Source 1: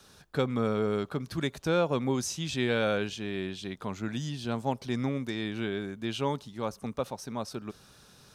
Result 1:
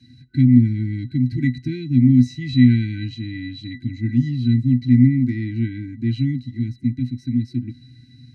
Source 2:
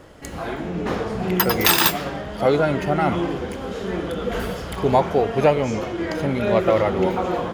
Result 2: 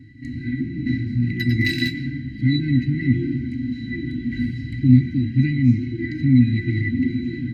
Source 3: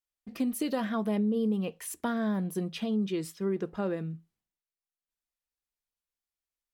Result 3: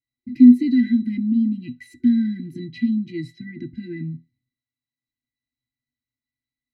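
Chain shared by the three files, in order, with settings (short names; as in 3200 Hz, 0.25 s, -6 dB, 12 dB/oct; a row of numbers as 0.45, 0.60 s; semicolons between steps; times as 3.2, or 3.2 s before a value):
octave resonator B, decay 0.13 s; FFT band-reject 360–1500 Hz; normalise peaks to -2 dBFS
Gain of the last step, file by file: +22.5, +15.5, +23.0 dB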